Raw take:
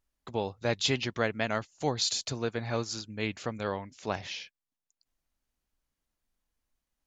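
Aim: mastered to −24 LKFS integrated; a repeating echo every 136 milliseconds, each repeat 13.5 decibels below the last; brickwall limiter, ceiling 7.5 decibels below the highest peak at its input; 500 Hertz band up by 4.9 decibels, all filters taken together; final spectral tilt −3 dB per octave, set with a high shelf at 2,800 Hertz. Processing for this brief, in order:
parametric band 500 Hz +5.5 dB
high-shelf EQ 2,800 Hz +7 dB
brickwall limiter −17.5 dBFS
repeating echo 136 ms, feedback 21%, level −13.5 dB
level +7 dB

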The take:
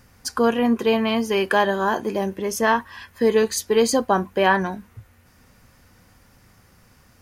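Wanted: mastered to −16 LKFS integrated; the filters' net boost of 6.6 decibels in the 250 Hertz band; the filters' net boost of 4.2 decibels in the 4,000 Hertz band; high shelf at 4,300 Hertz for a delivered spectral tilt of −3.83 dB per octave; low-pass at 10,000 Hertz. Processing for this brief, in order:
low-pass filter 10,000 Hz
parametric band 250 Hz +7.5 dB
parametric band 4,000 Hz +8 dB
high-shelf EQ 4,300 Hz −3.5 dB
level +2 dB

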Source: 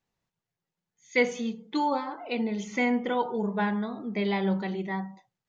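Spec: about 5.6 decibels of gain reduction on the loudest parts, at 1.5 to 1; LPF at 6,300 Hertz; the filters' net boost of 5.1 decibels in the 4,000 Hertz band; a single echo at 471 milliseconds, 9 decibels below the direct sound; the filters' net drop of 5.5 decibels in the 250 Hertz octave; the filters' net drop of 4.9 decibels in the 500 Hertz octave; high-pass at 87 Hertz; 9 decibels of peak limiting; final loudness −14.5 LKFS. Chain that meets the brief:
high-pass filter 87 Hz
low-pass filter 6,300 Hz
parametric band 250 Hz −6 dB
parametric band 500 Hz −4 dB
parametric band 4,000 Hz +7 dB
downward compressor 1.5 to 1, threshold −35 dBFS
brickwall limiter −27.5 dBFS
single-tap delay 471 ms −9 dB
level +22.5 dB

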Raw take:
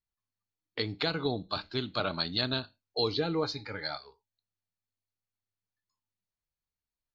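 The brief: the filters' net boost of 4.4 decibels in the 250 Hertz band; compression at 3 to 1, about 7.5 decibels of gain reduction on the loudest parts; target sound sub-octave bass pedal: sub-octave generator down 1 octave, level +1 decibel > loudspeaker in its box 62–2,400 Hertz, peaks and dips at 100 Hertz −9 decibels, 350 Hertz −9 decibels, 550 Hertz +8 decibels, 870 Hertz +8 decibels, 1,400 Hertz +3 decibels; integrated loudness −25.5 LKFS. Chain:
parametric band 250 Hz +8.5 dB
downward compressor 3 to 1, threshold −32 dBFS
sub-octave generator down 1 octave, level +1 dB
loudspeaker in its box 62–2,400 Hz, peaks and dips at 100 Hz −9 dB, 350 Hz −9 dB, 550 Hz +8 dB, 870 Hz +8 dB, 1,400 Hz +3 dB
level +10.5 dB

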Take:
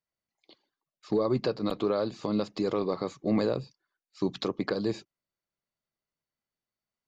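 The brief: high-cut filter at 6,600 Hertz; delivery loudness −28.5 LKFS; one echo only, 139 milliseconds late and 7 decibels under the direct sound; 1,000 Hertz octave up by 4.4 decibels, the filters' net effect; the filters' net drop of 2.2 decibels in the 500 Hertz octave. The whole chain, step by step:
low-pass filter 6,600 Hz
parametric band 500 Hz −4 dB
parametric band 1,000 Hz +6.5 dB
single-tap delay 139 ms −7 dB
level +2 dB

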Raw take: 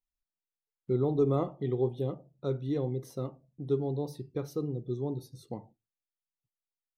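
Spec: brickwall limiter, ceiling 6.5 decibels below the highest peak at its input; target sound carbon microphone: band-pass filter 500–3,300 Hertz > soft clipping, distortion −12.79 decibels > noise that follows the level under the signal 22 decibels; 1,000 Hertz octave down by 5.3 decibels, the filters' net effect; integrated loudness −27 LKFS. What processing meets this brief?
parametric band 1,000 Hz −7 dB
brickwall limiter −23 dBFS
band-pass filter 500–3,300 Hz
soft clipping −36.5 dBFS
noise that follows the level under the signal 22 dB
level +18.5 dB

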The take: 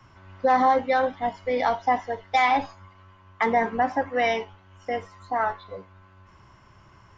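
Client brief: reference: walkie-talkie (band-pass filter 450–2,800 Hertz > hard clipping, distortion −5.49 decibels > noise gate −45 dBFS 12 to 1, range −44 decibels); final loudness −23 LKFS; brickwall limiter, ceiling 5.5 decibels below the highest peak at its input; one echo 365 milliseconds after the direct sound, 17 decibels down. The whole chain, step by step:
brickwall limiter −17 dBFS
band-pass filter 450–2,800 Hz
single-tap delay 365 ms −17 dB
hard clipping −32 dBFS
noise gate −45 dBFS 12 to 1, range −44 dB
level +13 dB

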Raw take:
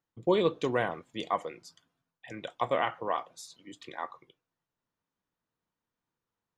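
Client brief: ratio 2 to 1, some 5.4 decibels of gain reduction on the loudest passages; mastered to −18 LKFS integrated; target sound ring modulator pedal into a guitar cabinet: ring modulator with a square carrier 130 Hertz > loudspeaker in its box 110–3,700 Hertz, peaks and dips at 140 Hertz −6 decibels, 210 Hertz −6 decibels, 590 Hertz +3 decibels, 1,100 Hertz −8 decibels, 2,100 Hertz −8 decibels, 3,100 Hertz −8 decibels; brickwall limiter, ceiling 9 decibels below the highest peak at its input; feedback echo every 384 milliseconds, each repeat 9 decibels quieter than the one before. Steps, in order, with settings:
downward compressor 2 to 1, threshold −30 dBFS
brickwall limiter −25 dBFS
repeating echo 384 ms, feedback 35%, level −9 dB
ring modulator with a square carrier 130 Hz
loudspeaker in its box 110–3,700 Hz, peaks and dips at 140 Hz −6 dB, 210 Hz −6 dB, 590 Hz +3 dB, 1,100 Hz −8 dB, 2,100 Hz −8 dB, 3,100 Hz −8 dB
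level +22.5 dB

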